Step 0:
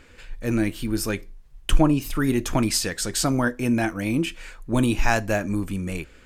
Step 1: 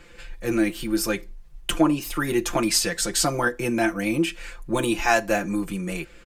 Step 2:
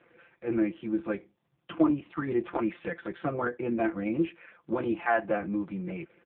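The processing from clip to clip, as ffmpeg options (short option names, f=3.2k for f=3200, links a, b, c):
-filter_complex "[0:a]aecho=1:1:5.8:0.84,acrossover=split=240[a][b];[a]acompressor=threshold=-34dB:ratio=4[c];[c][b]amix=inputs=2:normalize=0"
-af "highpass=130,lowpass=2k,volume=-4dB" -ar 8000 -c:a libopencore_amrnb -b:a 4750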